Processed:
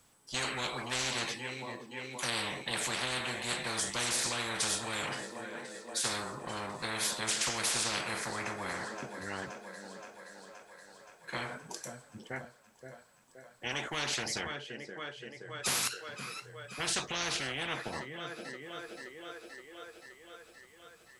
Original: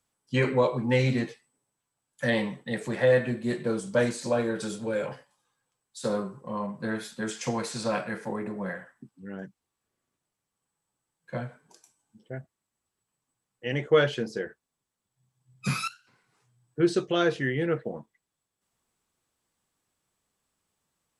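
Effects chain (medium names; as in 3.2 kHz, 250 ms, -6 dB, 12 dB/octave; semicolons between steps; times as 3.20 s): 14.41–15.66 s: low-pass 7.4 kHz 12 dB/octave; thinning echo 523 ms, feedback 71%, high-pass 300 Hz, level -23 dB; spectrum-flattening compressor 10:1; trim -7.5 dB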